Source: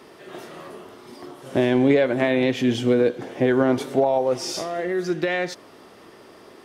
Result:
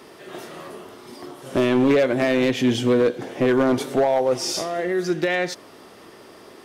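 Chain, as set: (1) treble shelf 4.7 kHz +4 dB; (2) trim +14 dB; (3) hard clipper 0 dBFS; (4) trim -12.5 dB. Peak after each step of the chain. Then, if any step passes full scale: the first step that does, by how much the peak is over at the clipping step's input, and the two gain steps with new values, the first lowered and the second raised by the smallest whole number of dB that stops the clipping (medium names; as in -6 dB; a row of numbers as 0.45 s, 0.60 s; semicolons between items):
-6.5 dBFS, +7.5 dBFS, 0.0 dBFS, -12.5 dBFS; step 2, 7.5 dB; step 2 +6 dB, step 4 -4.5 dB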